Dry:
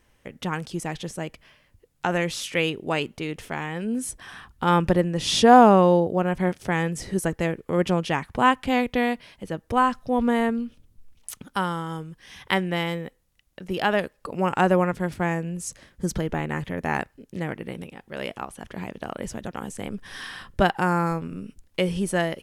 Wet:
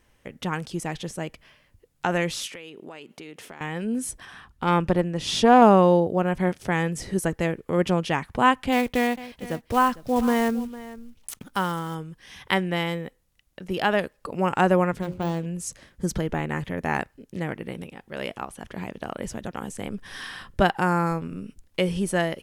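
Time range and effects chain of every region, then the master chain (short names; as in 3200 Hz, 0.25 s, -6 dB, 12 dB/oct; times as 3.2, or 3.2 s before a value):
2.47–3.61 HPF 210 Hz + compressor 8:1, threshold -37 dBFS
4.25–5.62 high shelf 8700 Hz -5 dB + tube stage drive 6 dB, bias 0.55
8.72–11.96 block floating point 5-bit + echo 0.453 s -17 dB
15.01–15.46 median filter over 25 samples + de-esser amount 95% + notches 60/120/180/240/300/360/420/480/540 Hz
whole clip: dry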